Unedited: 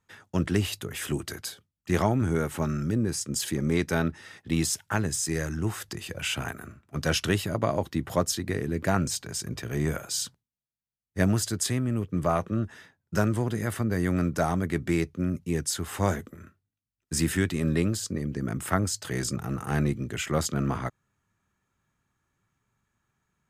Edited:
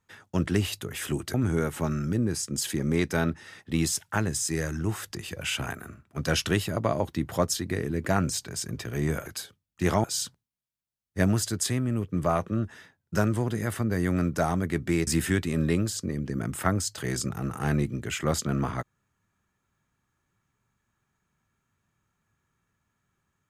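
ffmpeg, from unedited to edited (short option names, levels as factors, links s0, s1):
-filter_complex "[0:a]asplit=5[s0][s1][s2][s3][s4];[s0]atrim=end=1.342[s5];[s1]atrim=start=2.118:end=10.042[s6];[s2]atrim=start=1.338:end=2.122[s7];[s3]atrim=start=10.038:end=15.072[s8];[s4]atrim=start=17.138[s9];[s5][s6]acrossfade=d=0.004:c1=hsin:c2=hsin[s10];[s10][s7]acrossfade=d=0.004:c1=hsin:c2=hsin[s11];[s11][s8]acrossfade=d=0.004:c1=hsin:c2=hsin[s12];[s12][s9]acrossfade=d=0.004:c1=hsin:c2=hsin"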